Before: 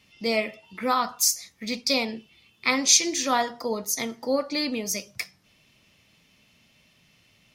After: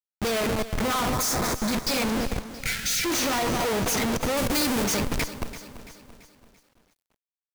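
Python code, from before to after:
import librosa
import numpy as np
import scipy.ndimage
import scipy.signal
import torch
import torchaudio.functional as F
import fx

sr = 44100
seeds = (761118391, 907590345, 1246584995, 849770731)

y = np.minimum(x, 2.0 * 10.0 ** (-18.0 / 20.0) - x)
y = fx.echo_feedback(y, sr, ms=225, feedback_pct=51, wet_db=-14.0)
y = fx.schmitt(y, sr, flips_db=-33.5)
y = fx.peak_eq(y, sr, hz=2900.0, db=-12.0, octaves=0.41, at=(1.13, 1.73))
y = fx.spec_erase(y, sr, start_s=2.53, length_s=0.52, low_hz=210.0, high_hz=1300.0)
y = fx.high_shelf(y, sr, hz=5900.0, db=8.0, at=(4.37, 4.84))
y = fx.echo_crushed(y, sr, ms=337, feedback_pct=55, bits=9, wet_db=-13.5)
y = F.gain(torch.from_numpy(y), 4.0).numpy()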